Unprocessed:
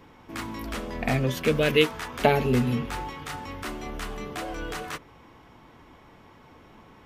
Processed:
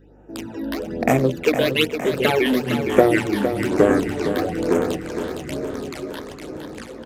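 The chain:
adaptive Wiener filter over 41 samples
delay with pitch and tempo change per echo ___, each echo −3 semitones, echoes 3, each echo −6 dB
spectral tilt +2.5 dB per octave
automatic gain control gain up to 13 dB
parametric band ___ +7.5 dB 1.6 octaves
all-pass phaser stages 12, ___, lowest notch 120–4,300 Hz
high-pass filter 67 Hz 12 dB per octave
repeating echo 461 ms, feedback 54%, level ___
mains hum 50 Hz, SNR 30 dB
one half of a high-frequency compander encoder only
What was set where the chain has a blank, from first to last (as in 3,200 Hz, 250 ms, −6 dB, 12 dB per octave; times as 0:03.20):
309 ms, 420 Hz, 1.1 Hz, −9 dB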